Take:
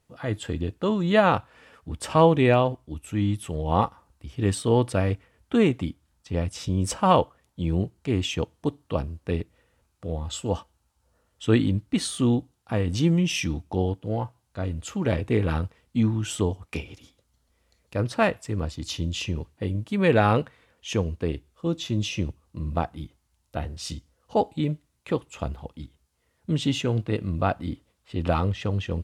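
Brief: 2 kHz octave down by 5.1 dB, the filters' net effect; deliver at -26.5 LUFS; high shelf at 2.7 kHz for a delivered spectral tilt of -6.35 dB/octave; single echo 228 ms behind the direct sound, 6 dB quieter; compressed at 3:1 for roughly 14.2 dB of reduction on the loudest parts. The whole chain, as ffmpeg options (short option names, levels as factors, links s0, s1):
-af "equalizer=f=2000:t=o:g=-5.5,highshelf=f=2700:g=-3,acompressor=threshold=0.02:ratio=3,aecho=1:1:228:0.501,volume=2.99"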